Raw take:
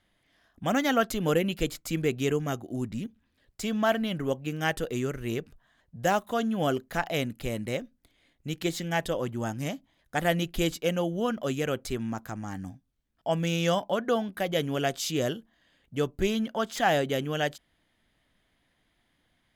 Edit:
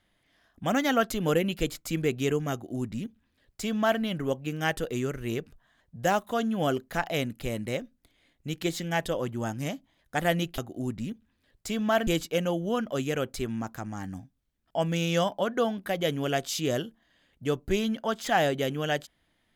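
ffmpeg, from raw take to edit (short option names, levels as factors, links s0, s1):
-filter_complex "[0:a]asplit=3[s0][s1][s2];[s0]atrim=end=10.582[s3];[s1]atrim=start=2.518:end=4.012[s4];[s2]atrim=start=10.578[s5];[s3][s4]acrossfade=d=0.004:c1=hsin:c2=hsin[s6];[s6][s5]acrossfade=d=0.004:c1=hsin:c2=hsin"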